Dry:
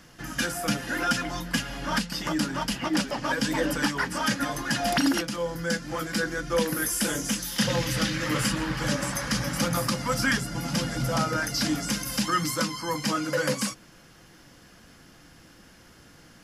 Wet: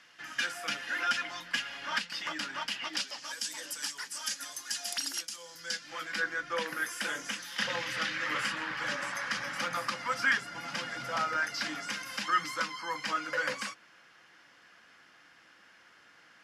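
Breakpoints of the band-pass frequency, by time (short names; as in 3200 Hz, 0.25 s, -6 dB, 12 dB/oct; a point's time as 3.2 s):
band-pass, Q 1
2.69 s 2400 Hz
3.36 s 7500 Hz
5.36 s 7500 Hz
6.23 s 1800 Hz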